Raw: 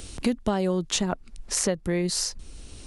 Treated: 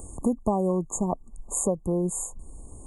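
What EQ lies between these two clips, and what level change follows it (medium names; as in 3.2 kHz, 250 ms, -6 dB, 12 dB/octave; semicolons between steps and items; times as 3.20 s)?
brick-wall FIR band-stop 1.2–6.5 kHz; peaking EQ 810 Hz +3 dB 0.55 oct; 0.0 dB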